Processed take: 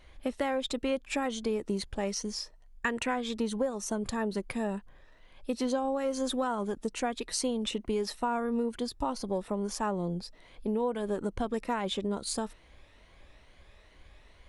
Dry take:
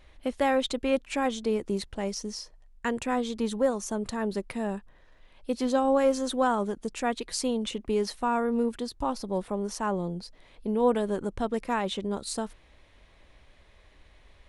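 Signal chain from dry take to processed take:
rippled gain that drifts along the octave scale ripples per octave 1.9, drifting +2.3 Hz, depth 6 dB
0:02.02–0:03.33: dynamic equaliser 2,000 Hz, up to +7 dB, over −45 dBFS, Q 0.8
downward compressor 12 to 1, threshold −26 dBFS, peak gain reduction 10.5 dB

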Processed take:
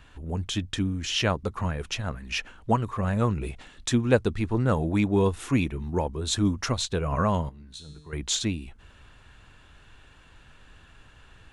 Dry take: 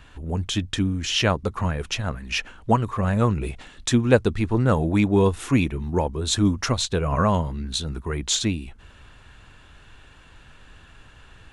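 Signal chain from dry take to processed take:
0:07.49–0:08.13: tuned comb filter 150 Hz, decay 0.92 s, harmonics all, mix 80%
level −4 dB

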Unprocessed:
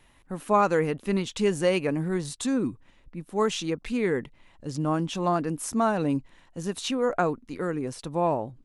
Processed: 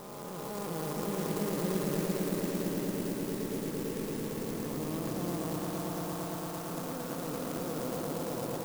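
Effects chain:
spectrum smeared in time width 1,170 ms
0:05.56–0:06.69: high-pass filter 790 Hz 12 dB per octave
on a send: echo that builds up and dies away 113 ms, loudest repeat 5, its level −5 dB
on the sum: converter with an unsteady clock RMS 0.091 ms
level −5.5 dB

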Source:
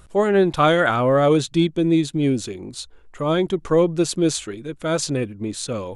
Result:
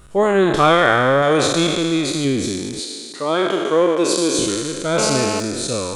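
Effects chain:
peak hold with a decay on every bin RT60 2.65 s
0:02.80–0:04.39: high-pass filter 290 Hz 12 dB per octave
reverb reduction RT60 0.56 s
0:01.22–0:02.25: tilt shelving filter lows −3.5 dB
0:04.98–0:05.40: phone interference −24 dBFS
level +1 dB

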